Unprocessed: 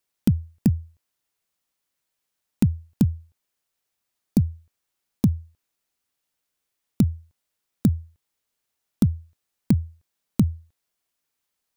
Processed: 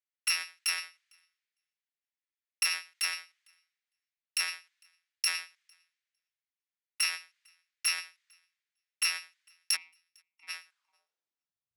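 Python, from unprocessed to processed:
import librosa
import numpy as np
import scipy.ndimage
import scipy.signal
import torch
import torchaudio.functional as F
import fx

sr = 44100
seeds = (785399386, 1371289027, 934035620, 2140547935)

p1 = fx.bit_reversed(x, sr, seeds[0], block=256)
p2 = scipy.signal.sosfilt(scipy.signal.butter(2, 5300.0, 'lowpass', fs=sr, output='sos'), p1)
p3 = fx.low_shelf(p2, sr, hz=440.0, db=-7.5)
p4 = fx.over_compress(p3, sr, threshold_db=-42.0, ratio=-1.0)
p5 = p3 + (p4 * 10.0 ** (-2.0 / 20.0))
p6 = fx.vowel_filter(p5, sr, vowel='u', at=(9.75, 10.47), fade=0.02)
p7 = fx.tube_stage(p6, sr, drive_db=23.0, bias=0.4)
p8 = fx.echo_thinned(p7, sr, ms=454, feedback_pct=23, hz=1100.0, wet_db=-21.5)
p9 = fx.filter_sweep_highpass(p8, sr, from_hz=1900.0, to_hz=73.0, start_s=10.65, end_s=11.76, q=2.3)
y = fx.band_widen(p9, sr, depth_pct=70)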